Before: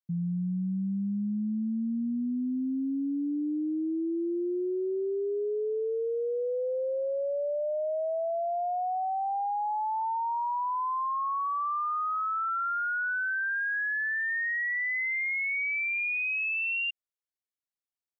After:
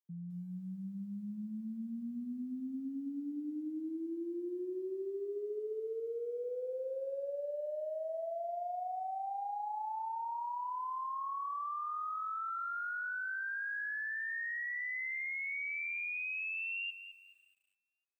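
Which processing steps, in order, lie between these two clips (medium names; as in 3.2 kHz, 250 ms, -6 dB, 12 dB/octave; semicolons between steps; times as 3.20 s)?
high-pass 200 Hz 12 dB/octave; on a send: filtered feedback delay 570 ms, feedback 48%, low-pass 840 Hz, level -22.5 dB; on the sum: bit-crushed delay 211 ms, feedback 35%, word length 10-bit, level -11 dB; trim -9 dB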